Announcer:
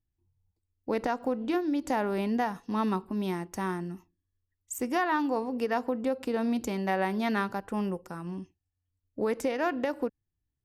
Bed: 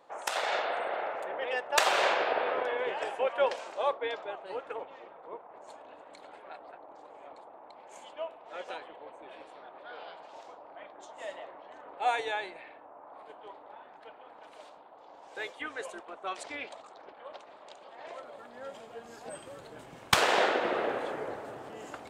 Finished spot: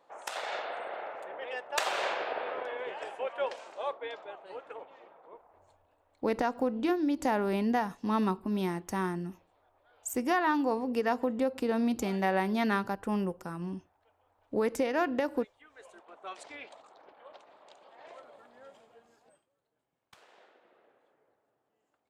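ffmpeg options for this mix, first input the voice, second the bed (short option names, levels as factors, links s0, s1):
-filter_complex "[0:a]adelay=5350,volume=1[s0];[1:a]volume=2.66,afade=t=out:st=5.1:d=0.69:silence=0.188365,afade=t=in:st=15.68:d=0.57:silence=0.199526,afade=t=out:st=18.18:d=1.29:silence=0.0354813[s1];[s0][s1]amix=inputs=2:normalize=0"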